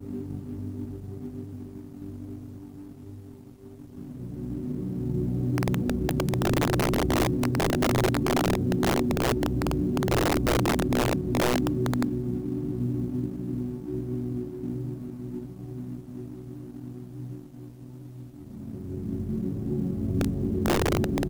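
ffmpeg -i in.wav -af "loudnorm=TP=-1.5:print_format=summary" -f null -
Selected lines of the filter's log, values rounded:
Input Integrated:    -27.9 LUFS
Input True Peak:     -13.4 dBTP
Input LRA:            14.3 LU
Input Threshold:     -39.0 LUFS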